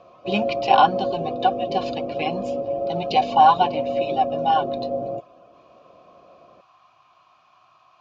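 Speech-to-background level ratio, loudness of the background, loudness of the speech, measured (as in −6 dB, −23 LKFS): 5.5 dB, −27.0 LKFS, −21.5 LKFS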